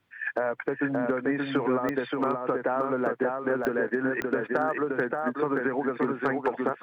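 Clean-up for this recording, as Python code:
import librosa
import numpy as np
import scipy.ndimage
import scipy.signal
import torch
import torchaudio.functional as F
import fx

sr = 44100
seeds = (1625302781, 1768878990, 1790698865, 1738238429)

y = fx.fix_declip(x, sr, threshold_db=-15.0)
y = fx.fix_declick_ar(y, sr, threshold=10.0)
y = fx.fix_echo_inverse(y, sr, delay_ms=576, level_db=-3.5)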